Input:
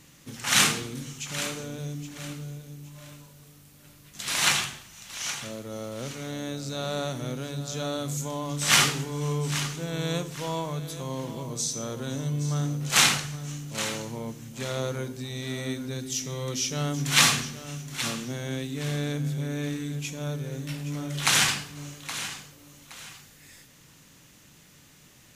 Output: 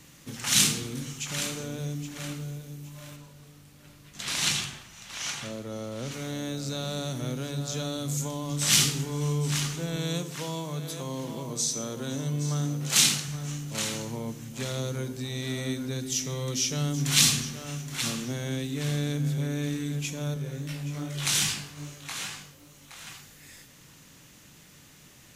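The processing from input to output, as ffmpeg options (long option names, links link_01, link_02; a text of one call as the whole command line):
ffmpeg -i in.wav -filter_complex "[0:a]asettb=1/sr,asplit=3[link_01][link_02][link_03];[link_01]atrim=end=3.164[link_04];[link_02]atrim=start=3.16:end=6.12,asetpts=PTS-STARTPTS,afade=type=in:duration=0.004:curve=qsin,afade=type=out:start_time=2.956:duration=0.004:curve=qsin,highshelf=frequency=8400:gain=-9.5[link_05];[link_03]atrim=start=6.116[link_06];[link_04][link_05]acrossfade=duration=0.004:curve1=hsin:curve2=qsin[link_07];[link_07][link_06]acrossfade=duration=0.004:curve1=qsin:curve2=hsin,asettb=1/sr,asplit=3[link_08][link_09][link_10];[link_08]atrim=end=9.964[link_11];[link_09]atrim=start=9.96:end=13.28,asetpts=PTS-STARTPTS,afade=type=in:duration=0.004:curve=qsin,afade=type=out:start_time=3.316:duration=0.004:curve=qsin,highpass=140[link_12];[link_10]atrim=start=13.276[link_13];[link_11][link_12]acrossfade=duration=0.004:curve1=hsin:curve2=qsin[link_14];[link_14][link_13]acrossfade=duration=0.004:curve1=qsin:curve2=hsin,asettb=1/sr,asplit=3[link_15][link_16][link_17];[link_15]atrim=end=20.344[link_18];[link_16]atrim=start=20.34:end=23.07,asetpts=PTS-STARTPTS,afade=type=in:duration=0.004:curve=qsin,afade=type=out:start_time=2.726:duration=0.004:curve=qsin,flanger=delay=18.5:depth=3.8:speed=2.5[link_19];[link_17]atrim=start=23.066[link_20];[link_18][link_19]acrossfade=duration=0.004:curve1=hsin:curve2=qsin[link_21];[link_21][link_20]acrossfade=duration=0.004:curve1=qsin:curve2=hsin,acrossover=split=340|3000[link_22][link_23][link_24];[link_23]acompressor=threshold=-38dB:ratio=6[link_25];[link_22][link_25][link_24]amix=inputs=3:normalize=0,volume=1.5dB" out.wav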